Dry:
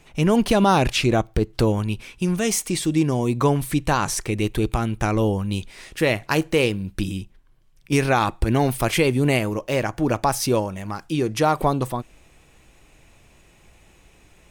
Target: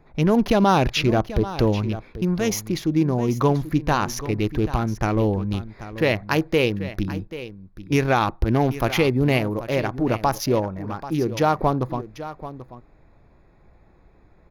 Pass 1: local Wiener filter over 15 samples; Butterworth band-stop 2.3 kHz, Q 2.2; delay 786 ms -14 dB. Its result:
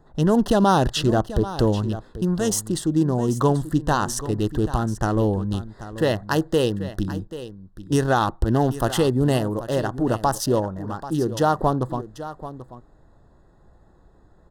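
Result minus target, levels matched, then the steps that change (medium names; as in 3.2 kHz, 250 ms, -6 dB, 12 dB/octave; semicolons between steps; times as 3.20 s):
8 kHz band +4.5 dB
change: Butterworth band-stop 8.3 kHz, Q 2.2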